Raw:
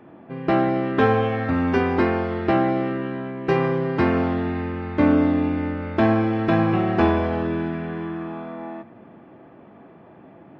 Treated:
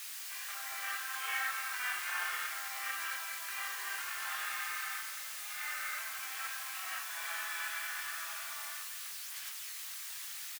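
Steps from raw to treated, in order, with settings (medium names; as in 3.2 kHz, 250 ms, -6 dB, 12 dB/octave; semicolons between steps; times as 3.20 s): in parallel at 0 dB: peak limiter -15.5 dBFS, peak gain reduction 10 dB; on the sum: feedback delay 85 ms, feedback 44%, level -19 dB; compressor with a negative ratio -18 dBFS, ratio -0.5; gated-style reverb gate 280 ms falling, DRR 8 dB; word length cut 6-bit, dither triangular; high-pass 1.4 kHz 24 dB/octave; chorus voices 4, 1.2 Hz, delay 21 ms, depth 3 ms; bit-crushed delay 219 ms, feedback 55%, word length 8-bit, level -10 dB; trim -4.5 dB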